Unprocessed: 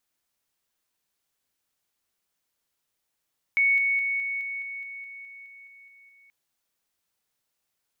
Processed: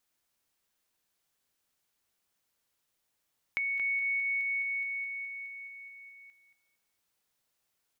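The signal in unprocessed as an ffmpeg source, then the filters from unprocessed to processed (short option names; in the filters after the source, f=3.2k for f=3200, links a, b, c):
-f lavfi -i "aevalsrc='pow(10,(-18-3*floor(t/0.21))/20)*sin(2*PI*2220*t)':d=2.73:s=44100"
-filter_complex "[0:a]acompressor=threshold=-32dB:ratio=6,asplit=2[a][b];[b]adelay=227,lowpass=f=2.3k:p=1,volume=-8dB,asplit=2[c][d];[d]adelay=227,lowpass=f=2.3k:p=1,volume=0.3,asplit=2[e][f];[f]adelay=227,lowpass=f=2.3k:p=1,volume=0.3,asplit=2[g][h];[h]adelay=227,lowpass=f=2.3k:p=1,volume=0.3[i];[a][c][e][g][i]amix=inputs=5:normalize=0"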